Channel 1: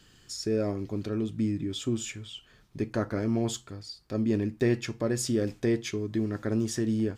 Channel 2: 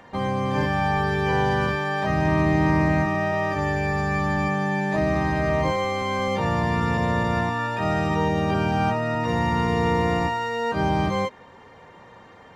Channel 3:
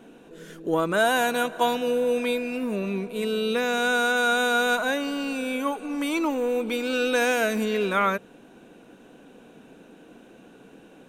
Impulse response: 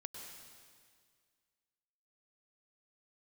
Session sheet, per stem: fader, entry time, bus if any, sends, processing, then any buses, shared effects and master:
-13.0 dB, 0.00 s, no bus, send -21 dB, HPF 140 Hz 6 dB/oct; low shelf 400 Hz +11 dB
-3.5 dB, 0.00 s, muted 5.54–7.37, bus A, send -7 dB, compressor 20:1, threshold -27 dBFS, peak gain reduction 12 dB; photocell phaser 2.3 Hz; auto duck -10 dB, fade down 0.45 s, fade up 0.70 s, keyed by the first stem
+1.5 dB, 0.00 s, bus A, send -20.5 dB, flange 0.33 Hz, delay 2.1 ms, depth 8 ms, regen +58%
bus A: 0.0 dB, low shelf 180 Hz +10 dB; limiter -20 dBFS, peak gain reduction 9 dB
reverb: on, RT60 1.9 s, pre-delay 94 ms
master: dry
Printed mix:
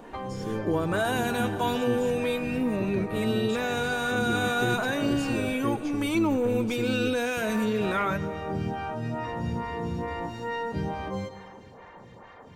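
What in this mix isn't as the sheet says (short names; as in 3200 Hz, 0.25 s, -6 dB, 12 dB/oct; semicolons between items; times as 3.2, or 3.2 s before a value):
stem 1: missing HPF 140 Hz 6 dB/oct; reverb return +8.0 dB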